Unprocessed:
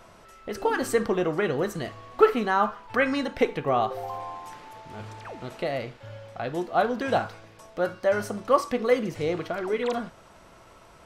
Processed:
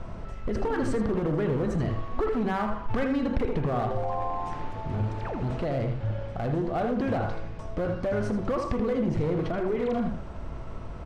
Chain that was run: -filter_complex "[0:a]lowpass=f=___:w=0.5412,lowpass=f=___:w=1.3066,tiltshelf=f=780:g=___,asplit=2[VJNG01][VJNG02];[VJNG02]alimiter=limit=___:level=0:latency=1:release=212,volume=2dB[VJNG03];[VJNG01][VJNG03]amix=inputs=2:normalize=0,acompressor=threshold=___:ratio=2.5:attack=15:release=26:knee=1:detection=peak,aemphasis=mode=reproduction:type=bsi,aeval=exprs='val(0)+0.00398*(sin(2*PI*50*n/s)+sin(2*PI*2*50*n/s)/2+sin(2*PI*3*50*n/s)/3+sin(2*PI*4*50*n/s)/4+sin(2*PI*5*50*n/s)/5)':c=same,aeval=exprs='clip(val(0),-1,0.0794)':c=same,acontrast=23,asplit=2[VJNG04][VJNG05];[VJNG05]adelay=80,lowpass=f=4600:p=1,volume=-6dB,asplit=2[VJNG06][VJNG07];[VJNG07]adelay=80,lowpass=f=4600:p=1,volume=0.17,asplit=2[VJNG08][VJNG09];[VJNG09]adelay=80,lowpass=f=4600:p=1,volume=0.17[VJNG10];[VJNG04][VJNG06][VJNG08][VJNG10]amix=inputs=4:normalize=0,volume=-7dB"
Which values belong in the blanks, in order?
10000, 10000, 3, -11.5dB, -34dB